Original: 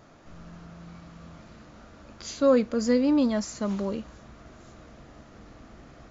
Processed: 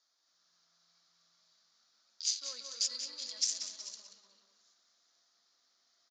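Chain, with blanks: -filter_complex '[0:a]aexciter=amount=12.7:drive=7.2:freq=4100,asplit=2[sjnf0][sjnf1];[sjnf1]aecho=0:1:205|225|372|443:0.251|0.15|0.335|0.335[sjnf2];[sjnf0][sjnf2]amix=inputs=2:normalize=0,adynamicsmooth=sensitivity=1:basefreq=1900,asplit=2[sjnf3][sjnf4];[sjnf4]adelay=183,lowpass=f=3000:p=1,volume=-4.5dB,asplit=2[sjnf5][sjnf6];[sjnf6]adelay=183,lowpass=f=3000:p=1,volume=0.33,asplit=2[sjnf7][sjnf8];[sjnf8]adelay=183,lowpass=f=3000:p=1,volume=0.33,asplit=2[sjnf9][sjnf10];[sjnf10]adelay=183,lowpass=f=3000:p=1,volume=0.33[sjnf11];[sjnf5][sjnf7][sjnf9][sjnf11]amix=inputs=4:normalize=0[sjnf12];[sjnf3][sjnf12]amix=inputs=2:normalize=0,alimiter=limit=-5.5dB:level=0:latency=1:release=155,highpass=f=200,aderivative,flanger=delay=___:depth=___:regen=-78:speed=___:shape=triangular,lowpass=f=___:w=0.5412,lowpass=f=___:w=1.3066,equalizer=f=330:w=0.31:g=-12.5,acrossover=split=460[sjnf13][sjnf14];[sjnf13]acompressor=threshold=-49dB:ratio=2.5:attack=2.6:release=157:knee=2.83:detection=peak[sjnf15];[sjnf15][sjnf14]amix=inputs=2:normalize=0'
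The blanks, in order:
0.6, 5.8, 0.75, 5500, 5500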